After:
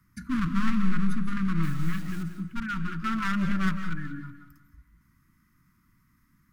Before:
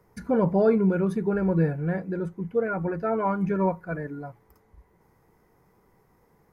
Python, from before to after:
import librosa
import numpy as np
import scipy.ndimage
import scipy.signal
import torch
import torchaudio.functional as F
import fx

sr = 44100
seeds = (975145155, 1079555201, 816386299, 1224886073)

p1 = np.minimum(x, 2.0 * 10.0 ** (-25.0 / 20.0) - x)
p2 = scipy.signal.sosfilt(scipy.signal.ellip(3, 1.0, 40, [280.0, 1200.0], 'bandstop', fs=sr, output='sos'), p1)
p3 = fx.quant_dither(p2, sr, seeds[0], bits=8, dither='none', at=(1.63, 2.23))
p4 = fx.leveller(p3, sr, passes=1, at=(3.04, 3.9))
p5 = p4 + fx.echo_feedback(p4, sr, ms=185, feedback_pct=41, wet_db=-15.5, dry=0)
y = fx.rev_freeverb(p5, sr, rt60_s=0.45, hf_ratio=0.6, predelay_ms=120, drr_db=8.5)